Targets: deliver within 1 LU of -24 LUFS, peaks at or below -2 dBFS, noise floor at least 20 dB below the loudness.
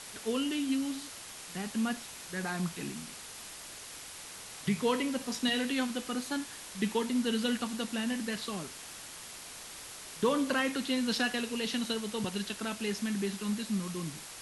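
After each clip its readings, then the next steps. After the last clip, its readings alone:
noise floor -47 dBFS; noise floor target -54 dBFS; loudness -34.0 LUFS; peak level -16.5 dBFS; loudness target -24.0 LUFS
-> noise reduction 7 dB, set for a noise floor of -47 dBFS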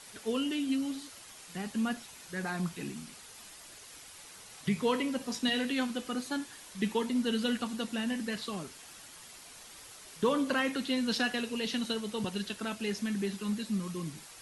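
noise floor -51 dBFS; noise floor target -54 dBFS
-> noise reduction 6 dB, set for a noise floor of -51 dBFS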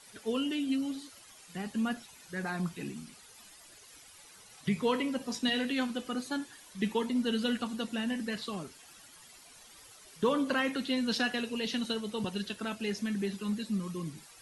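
noise floor -55 dBFS; loudness -33.5 LUFS; peak level -16.5 dBFS; loudness target -24.0 LUFS
-> trim +9.5 dB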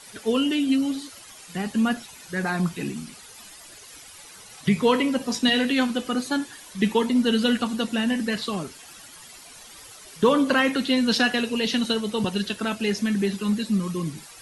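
loudness -24.0 LUFS; peak level -7.0 dBFS; noise floor -46 dBFS

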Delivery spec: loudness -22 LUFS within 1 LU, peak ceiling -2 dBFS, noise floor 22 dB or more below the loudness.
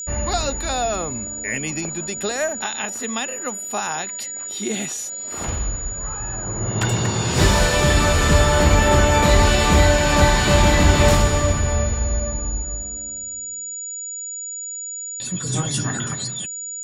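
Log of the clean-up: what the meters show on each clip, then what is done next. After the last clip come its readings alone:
tick rate 44 per s; steady tone 6.9 kHz; tone level -28 dBFS; loudness -20.5 LUFS; peak level -1.5 dBFS; loudness target -22.0 LUFS
-> de-click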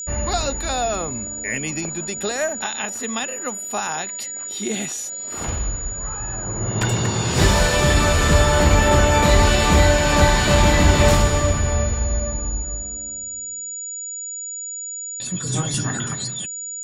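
tick rate 0.30 per s; steady tone 6.9 kHz; tone level -28 dBFS
-> band-stop 6.9 kHz, Q 30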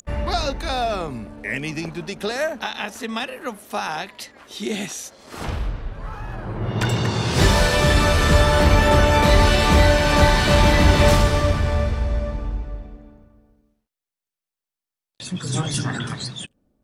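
steady tone not found; loudness -20.0 LUFS; peak level -2.0 dBFS; loudness target -22.0 LUFS
-> trim -2 dB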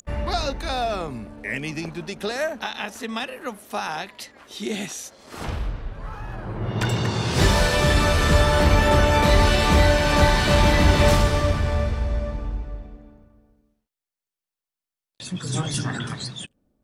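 loudness -22.0 LUFS; peak level -4.0 dBFS; noise floor -90 dBFS

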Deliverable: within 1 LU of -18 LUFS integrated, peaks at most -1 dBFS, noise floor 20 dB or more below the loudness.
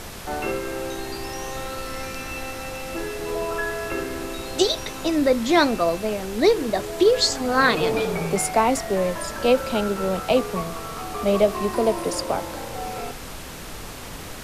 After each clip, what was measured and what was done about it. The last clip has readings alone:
noise floor -36 dBFS; noise floor target -44 dBFS; loudness -23.5 LUFS; peak level -3.5 dBFS; loudness target -18.0 LUFS
-> noise print and reduce 8 dB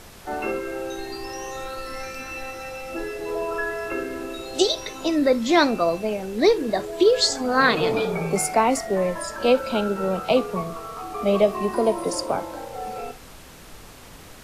noise floor -44 dBFS; loudness -23.5 LUFS; peak level -4.0 dBFS; loudness target -18.0 LUFS
-> trim +5.5 dB; peak limiter -1 dBFS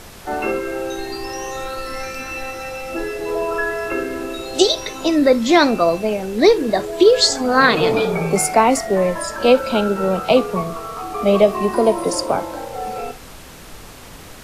loudness -18.0 LUFS; peak level -1.0 dBFS; noise floor -39 dBFS

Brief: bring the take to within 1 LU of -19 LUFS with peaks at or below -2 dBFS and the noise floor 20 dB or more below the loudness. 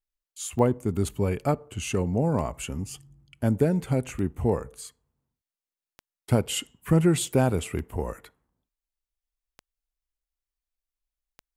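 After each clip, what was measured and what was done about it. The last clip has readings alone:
clicks found 7; loudness -26.5 LUFS; peak level -8.0 dBFS; loudness target -19.0 LUFS
-> de-click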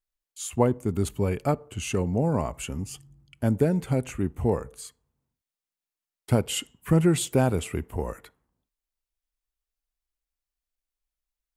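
clicks found 0; loudness -26.5 LUFS; peak level -8.0 dBFS; loudness target -19.0 LUFS
-> trim +7.5 dB; peak limiter -2 dBFS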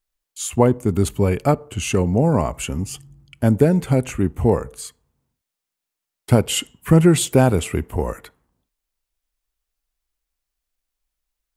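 loudness -19.0 LUFS; peak level -2.0 dBFS; noise floor -84 dBFS

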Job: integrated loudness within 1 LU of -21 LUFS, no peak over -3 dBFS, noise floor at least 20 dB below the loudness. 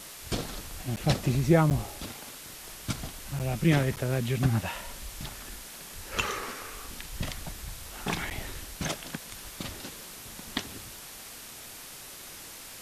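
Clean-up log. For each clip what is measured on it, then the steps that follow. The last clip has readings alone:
dropouts 5; longest dropout 8.7 ms; noise floor -45 dBFS; noise floor target -53 dBFS; loudness -32.5 LUFS; peak level -9.0 dBFS; loudness target -21.0 LUFS
-> interpolate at 0.96/1.70/3.39/3.96/8.30 s, 8.7 ms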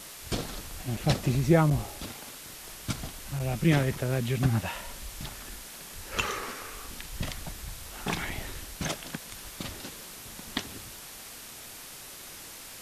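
dropouts 0; noise floor -45 dBFS; noise floor target -53 dBFS
-> noise print and reduce 8 dB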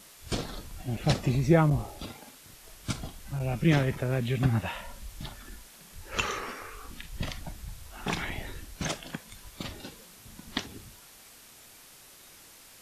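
noise floor -53 dBFS; loudness -30.5 LUFS; peak level -9.0 dBFS; loudness target -21.0 LUFS
-> trim +9.5 dB; peak limiter -3 dBFS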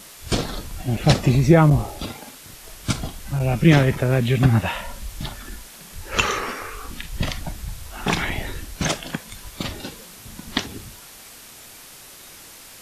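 loudness -21.5 LUFS; peak level -3.0 dBFS; noise floor -43 dBFS

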